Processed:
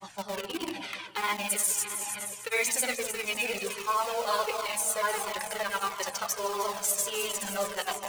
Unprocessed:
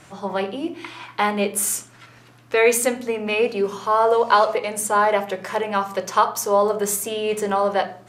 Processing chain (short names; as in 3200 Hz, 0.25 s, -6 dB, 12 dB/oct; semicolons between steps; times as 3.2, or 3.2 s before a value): grains, pitch spread up and down by 0 st; echo with dull and thin repeats by turns 0.155 s, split 920 Hz, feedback 83%, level -10.5 dB; in parallel at -10 dB: bit-crush 4-bit; on the sum: tilt shelf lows -7 dB, about 1200 Hz; reverse; upward compressor, threshold -14 dBFS; reverse; cascading flanger falling 1.5 Hz; gain -7 dB